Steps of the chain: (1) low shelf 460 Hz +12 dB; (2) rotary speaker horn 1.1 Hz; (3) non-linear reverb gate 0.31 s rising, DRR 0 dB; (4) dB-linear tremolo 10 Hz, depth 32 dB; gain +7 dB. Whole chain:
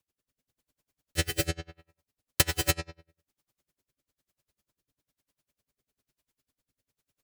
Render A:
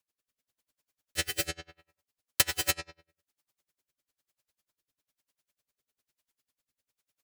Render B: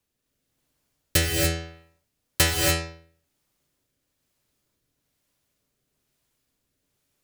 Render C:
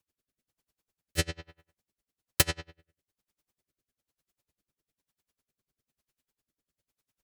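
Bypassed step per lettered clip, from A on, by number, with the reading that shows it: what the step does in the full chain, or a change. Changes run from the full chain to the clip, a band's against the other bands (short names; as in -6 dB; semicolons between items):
1, 125 Hz band -10.0 dB; 4, momentary loudness spread change -1 LU; 3, momentary loudness spread change -3 LU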